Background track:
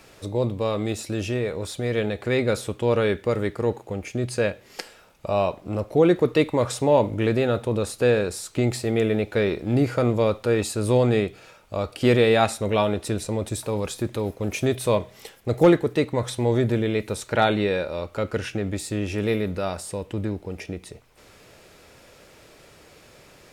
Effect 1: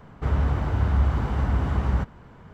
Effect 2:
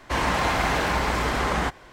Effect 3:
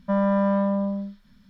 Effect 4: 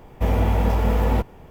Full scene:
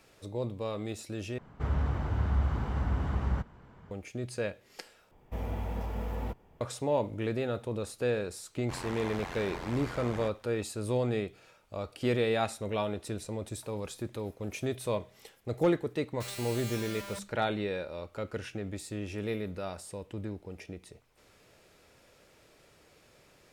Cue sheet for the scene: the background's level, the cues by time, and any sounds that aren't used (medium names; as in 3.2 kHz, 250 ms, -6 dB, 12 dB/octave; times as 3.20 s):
background track -10.5 dB
1.38 s: replace with 1 -7 dB
5.11 s: replace with 4 -15.5 dB
8.59 s: add 2 -13.5 dB + AM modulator 88 Hz, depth 95%
16.12 s: add 3 -8.5 dB + integer overflow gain 30 dB